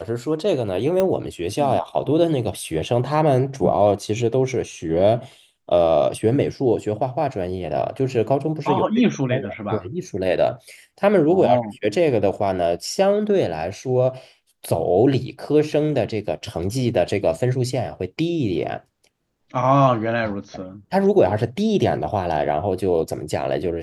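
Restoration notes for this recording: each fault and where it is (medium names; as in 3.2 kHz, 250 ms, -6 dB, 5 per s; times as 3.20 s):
1.00 s: pop -9 dBFS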